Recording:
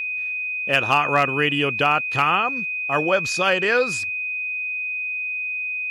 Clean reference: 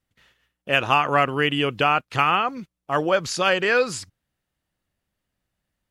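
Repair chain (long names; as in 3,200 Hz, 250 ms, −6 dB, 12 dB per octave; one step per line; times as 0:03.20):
clipped peaks rebuilt −7 dBFS
notch filter 2,500 Hz, Q 30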